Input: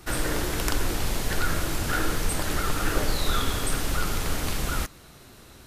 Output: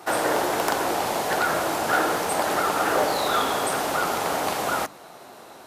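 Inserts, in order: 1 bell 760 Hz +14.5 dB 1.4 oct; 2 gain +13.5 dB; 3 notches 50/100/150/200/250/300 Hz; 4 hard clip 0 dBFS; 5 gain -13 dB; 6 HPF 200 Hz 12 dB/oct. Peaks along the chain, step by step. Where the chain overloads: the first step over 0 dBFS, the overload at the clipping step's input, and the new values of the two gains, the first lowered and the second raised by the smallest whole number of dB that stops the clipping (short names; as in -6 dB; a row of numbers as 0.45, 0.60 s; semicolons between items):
-4.5, +9.0, +8.5, 0.0, -13.0, -9.5 dBFS; step 2, 8.5 dB; step 2 +4.5 dB, step 5 -4 dB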